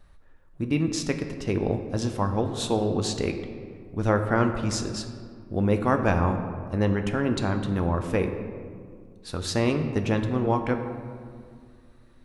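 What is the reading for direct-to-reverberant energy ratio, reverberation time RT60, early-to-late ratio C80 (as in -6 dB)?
5.5 dB, 2.1 s, 9.0 dB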